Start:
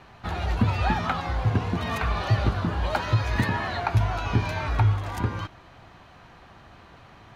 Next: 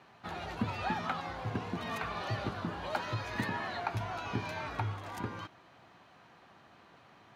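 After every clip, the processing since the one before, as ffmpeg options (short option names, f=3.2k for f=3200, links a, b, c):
-af "highpass=160,volume=-8dB"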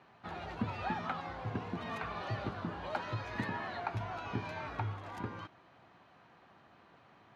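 -af "aemphasis=mode=reproduction:type=50kf,volume=-2dB"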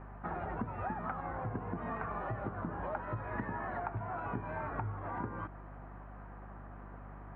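-af "lowpass=f=1.7k:w=0.5412,lowpass=f=1.7k:w=1.3066,acompressor=threshold=-44dB:ratio=6,aeval=exprs='val(0)+0.00141*(sin(2*PI*50*n/s)+sin(2*PI*2*50*n/s)/2+sin(2*PI*3*50*n/s)/3+sin(2*PI*4*50*n/s)/4+sin(2*PI*5*50*n/s)/5)':c=same,volume=8.5dB"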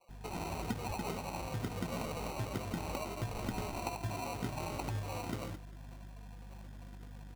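-filter_complex "[0:a]afftdn=nr=24:nf=-46,acrossover=split=810[a][b];[a]adelay=90[c];[c][b]amix=inputs=2:normalize=0,acrusher=samples=26:mix=1:aa=0.000001,volume=1dB"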